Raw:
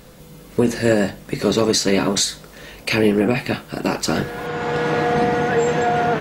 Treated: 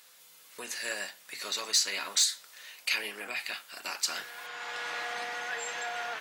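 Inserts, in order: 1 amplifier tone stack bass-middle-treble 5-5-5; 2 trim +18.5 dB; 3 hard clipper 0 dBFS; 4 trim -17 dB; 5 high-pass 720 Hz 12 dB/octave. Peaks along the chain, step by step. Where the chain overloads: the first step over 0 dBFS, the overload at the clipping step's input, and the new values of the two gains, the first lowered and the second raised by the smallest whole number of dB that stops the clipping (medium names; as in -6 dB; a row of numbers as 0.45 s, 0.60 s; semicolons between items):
-12.5 dBFS, +6.0 dBFS, 0.0 dBFS, -17.0 dBFS, -15.0 dBFS; step 2, 6.0 dB; step 2 +12.5 dB, step 4 -11 dB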